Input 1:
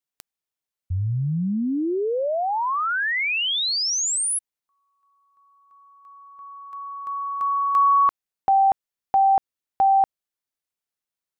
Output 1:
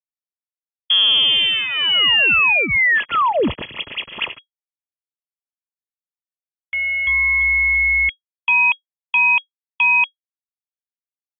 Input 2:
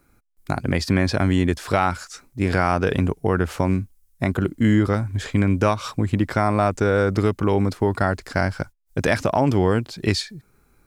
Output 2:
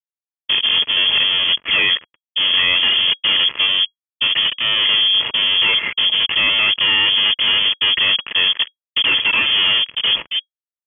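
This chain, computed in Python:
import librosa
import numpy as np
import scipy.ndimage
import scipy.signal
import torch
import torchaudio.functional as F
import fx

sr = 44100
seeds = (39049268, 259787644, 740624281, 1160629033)

y = scipy.ndimage.median_filter(x, 25, mode='constant')
y = fx.fuzz(y, sr, gain_db=40.0, gate_db=-41.0)
y = fx.freq_invert(y, sr, carrier_hz=3300)
y = fx.notch_comb(y, sr, f0_hz=760.0)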